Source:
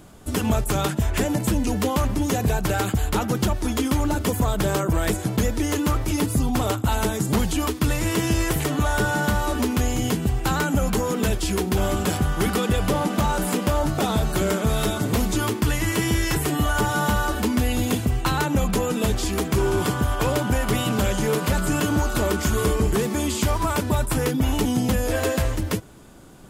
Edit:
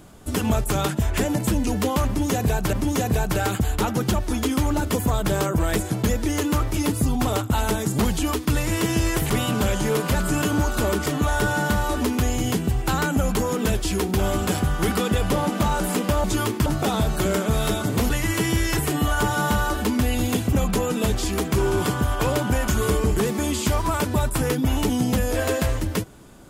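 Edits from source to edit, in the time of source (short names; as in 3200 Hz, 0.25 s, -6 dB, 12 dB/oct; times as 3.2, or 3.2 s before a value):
2.07–2.73 loop, 2 plays
15.26–15.68 move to 13.82
18.11–18.53 cut
20.68–22.44 move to 8.64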